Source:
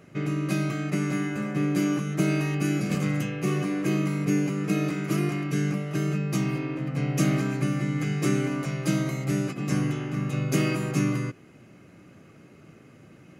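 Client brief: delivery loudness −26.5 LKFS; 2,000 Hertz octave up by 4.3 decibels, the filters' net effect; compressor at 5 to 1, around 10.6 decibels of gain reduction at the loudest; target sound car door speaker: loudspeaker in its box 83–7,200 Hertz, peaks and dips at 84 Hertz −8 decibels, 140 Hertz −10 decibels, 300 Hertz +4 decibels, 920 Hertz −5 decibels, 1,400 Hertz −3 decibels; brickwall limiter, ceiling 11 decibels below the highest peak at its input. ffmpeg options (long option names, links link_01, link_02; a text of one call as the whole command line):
ffmpeg -i in.wav -af "equalizer=frequency=2000:width_type=o:gain=6,acompressor=threshold=-31dB:ratio=5,alimiter=level_in=7dB:limit=-24dB:level=0:latency=1,volume=-7dB,highpass=83,equalizer=frequency=84:width_type=q:width=4:gain=-8,equalizer=frequency=140:width_type=q:width=4:gain=-10,equalizer=frequency=300:width_type=q:width=4:gain=4,equalizer=frequency=920:width_type=q:width=4:gain=-5,equalizer=frequency=1400:width_type=q:width=4:gain=-3,lowpass=frequency=7200:width=0.5412,lowpass=frequency=7200:width=1.3066,volume=13dB" out.wav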